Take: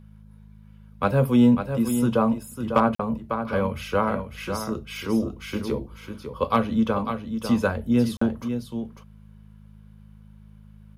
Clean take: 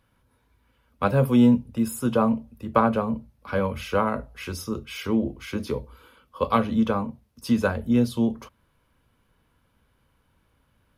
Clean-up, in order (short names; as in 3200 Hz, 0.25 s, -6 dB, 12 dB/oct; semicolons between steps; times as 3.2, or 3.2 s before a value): clip repair -8.5 dBFS; de-hum 52.4 Hz, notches 4; interpolate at 2.95/8.17, 44 ms; inverse comb 0.549 s -8 dB